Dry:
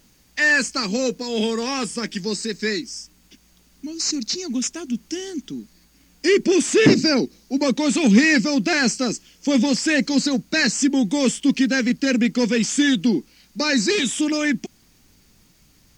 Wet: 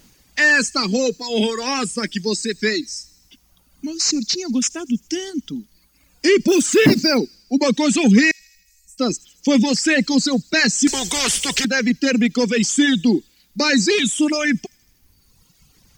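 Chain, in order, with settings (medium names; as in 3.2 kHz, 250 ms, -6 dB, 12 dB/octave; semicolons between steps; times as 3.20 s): 6.48–7.19 s: block-companded coder 5-bit; in parallel at -0.5 dB: peak limiter -13 dBFS, peak gain reduction 10 dB; on the sum: reverb removal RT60 1.6 s; 8.31–8.98 s: inverse Chebyshev band-stop 260–2700 Hz, stop band 80 dB; feedback echo behind a high-pass 80 ms, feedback 63%, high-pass 5.1 kHz, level -20 dB; 10.87–11.65 s: spectrum-flattening compressor 4:1; trim -1 dB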